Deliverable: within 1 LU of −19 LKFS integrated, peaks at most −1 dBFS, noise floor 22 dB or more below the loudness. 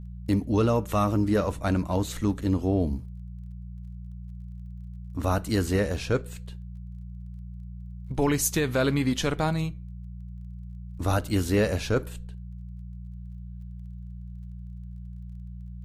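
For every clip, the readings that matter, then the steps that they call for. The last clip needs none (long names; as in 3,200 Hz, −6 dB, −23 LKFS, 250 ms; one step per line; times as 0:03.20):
crackle rate 21 per second; mains hum 60 Hz; hum harmonics up to 180 Hz; level of the hum −36 dBFS; integrated loudness −26.5 LKFS; sample peak −13.0 dBFS; target loudness −19.0 LKFS
→ click removal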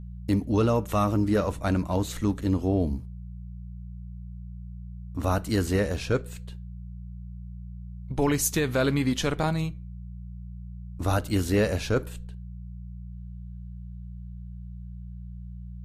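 crackle rate 0 per second; mains hum 60 Hz; hum harmonics up to 180 Hz; level of the hum −36 dBFS
→ hum removal 60 Hz, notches 3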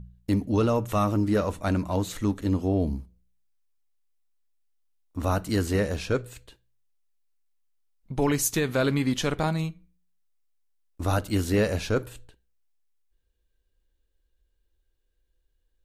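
mains hum none found; integrated loudness −26.5 LKFS; sample peak −12.5 dBFS; target loudness −19.0 LKFS
→ level +7.5 dB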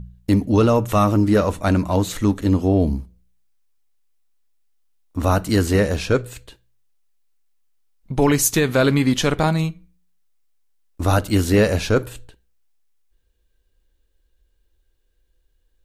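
integrated loudness −19.0 LKFS; sample peak −5.0 dBFS; background noise floor −66 dBFS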